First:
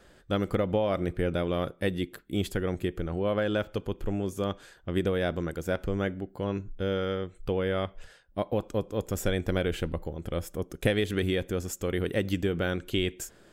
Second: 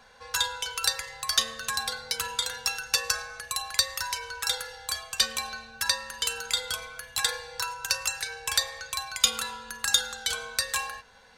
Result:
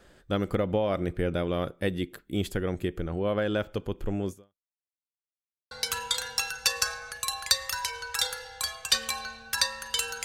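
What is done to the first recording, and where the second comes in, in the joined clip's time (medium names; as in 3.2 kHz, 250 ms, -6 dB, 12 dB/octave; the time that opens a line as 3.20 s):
first
4.31–4.74 s: fade out exponential
4.74–5.71 s: mute
5.71 s: go over to second from 1.99 s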